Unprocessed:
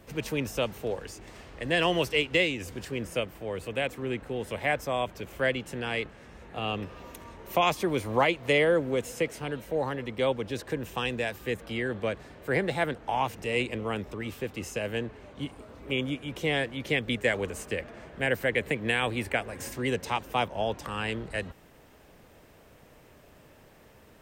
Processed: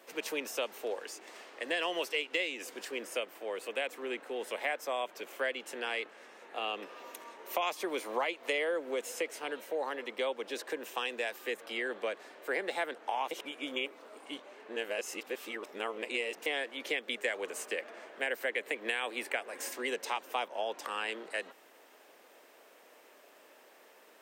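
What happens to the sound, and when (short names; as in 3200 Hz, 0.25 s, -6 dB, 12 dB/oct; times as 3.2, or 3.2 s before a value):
13.31–16.46 reverse
whole clip: Bessel high-pass 470 Hz, order 6; compressor 3:1, threshold -31 dBFS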